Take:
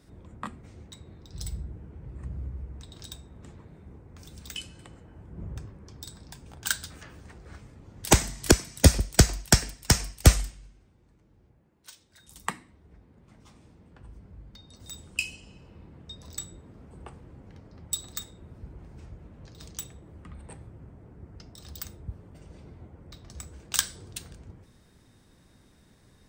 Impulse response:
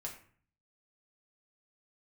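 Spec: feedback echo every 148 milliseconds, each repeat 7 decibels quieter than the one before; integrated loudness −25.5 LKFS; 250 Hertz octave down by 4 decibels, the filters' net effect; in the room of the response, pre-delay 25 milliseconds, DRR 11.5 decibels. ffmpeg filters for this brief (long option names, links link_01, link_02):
-filter_complex "[0:a]equalizer=frequency=250:width_type=o:gain=-6,aecho=1:1:148|296|444|592|740:0.447|0.201|0.0905|0.0407|0.0183,asplit=2[link_01][link_02];[1:a]atrim=start_sample=2205,adelay=25[link_03];[link_02][link_03]afir=irnorm=-1:irlink=0,volume=-10dB[link_04];[link_01][link_04]amix=inputs=2:normalize=0,volume=1.5dB"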